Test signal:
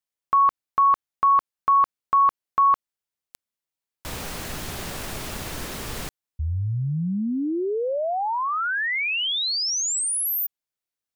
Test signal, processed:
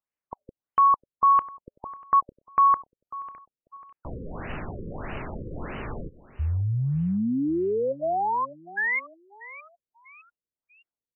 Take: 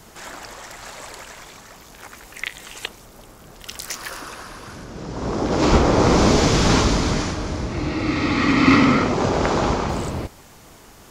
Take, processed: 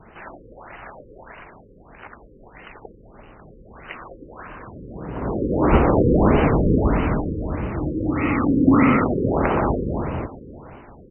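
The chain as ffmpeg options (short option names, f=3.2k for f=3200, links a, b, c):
-af "aecho=1:1:545|1090|1635:0.133|0.0547|0.0224,afftfilt=real='re*lt(b*sr/1024,520*pow(3100/520,0.5+0.5*sin(2*PI*1.6*pts/sr)))':imag='im*lt(b*sr/1024,520*pow(3100/520,0.5+0.5*sin(2*PI*1.6*pts/sr)))':win_size=1024:overlap=0.75"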